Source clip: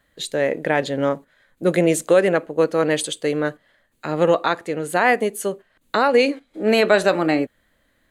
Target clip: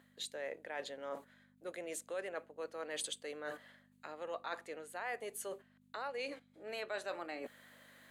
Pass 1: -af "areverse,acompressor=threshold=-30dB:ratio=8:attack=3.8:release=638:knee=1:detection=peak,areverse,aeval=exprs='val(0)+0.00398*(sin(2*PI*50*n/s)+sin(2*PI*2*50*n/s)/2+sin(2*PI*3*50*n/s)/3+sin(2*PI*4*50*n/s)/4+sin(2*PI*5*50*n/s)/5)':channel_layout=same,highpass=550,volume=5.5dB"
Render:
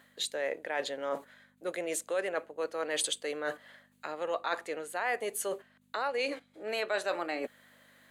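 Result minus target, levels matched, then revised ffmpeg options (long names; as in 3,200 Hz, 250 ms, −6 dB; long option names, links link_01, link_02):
downward compressor: peak gain reduction −9 dB
-af "areverse,acompressor=threshold=-40.5dB:ratio=8:attack=3.8:release=638:knee=1:detection=peak,areverse,aeval=exprs='val(0)+0.00398*(sin(2*PI*50*n/s)+sin(2*PI*2*50*n/s)/2+sin(2*PI*3*50*n/s)/3+sin(2*PI*4*50*n/s)/4+sin(2*PI*5*50*n/s)/5)':channel_layout=same,highpass=550,volume=5.5dB"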